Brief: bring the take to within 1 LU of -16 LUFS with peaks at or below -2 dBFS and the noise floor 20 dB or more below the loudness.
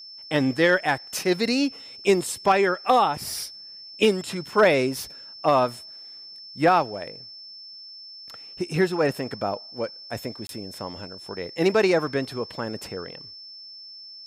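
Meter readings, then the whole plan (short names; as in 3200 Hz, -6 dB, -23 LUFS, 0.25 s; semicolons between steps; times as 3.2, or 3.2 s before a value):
dropouts 1; longest dropout 22 ms; steady tone 5300 Hz; tone level -40 dBFS; loudness -24.0 LUFS; peak -8.5 dBFS; loudness target -16.0 LUFS
-> interpolate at 10.47, 22 ms; notch 5300 Hz, Q 30; gain +8 dB; limiter -2 dBFS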